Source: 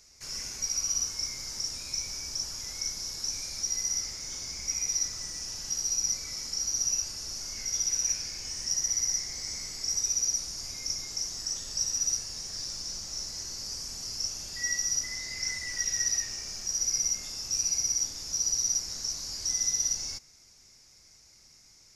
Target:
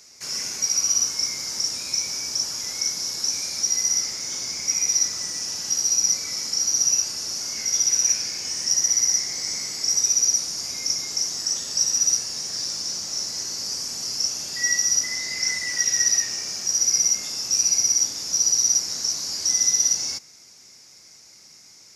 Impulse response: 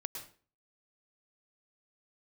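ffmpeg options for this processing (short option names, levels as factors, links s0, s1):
-af "highpass=160,volume=2.66"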